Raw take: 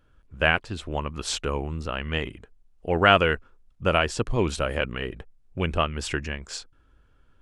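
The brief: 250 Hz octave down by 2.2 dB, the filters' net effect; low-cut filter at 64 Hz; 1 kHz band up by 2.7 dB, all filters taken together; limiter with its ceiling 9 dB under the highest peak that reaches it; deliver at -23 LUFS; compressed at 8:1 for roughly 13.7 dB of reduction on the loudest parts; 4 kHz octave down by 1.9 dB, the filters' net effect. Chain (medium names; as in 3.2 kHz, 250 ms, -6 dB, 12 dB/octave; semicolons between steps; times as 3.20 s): high-pass 64 Hz; peaking EQ 250 Hz -3.5 dB; peaking EQ 1 kHz +4.5 dB; peaking EQ 4 kHz -3.5 dB; compression 8:1, threshold -24 dBFS; trim +12 dB; peak limiter -9 dBFS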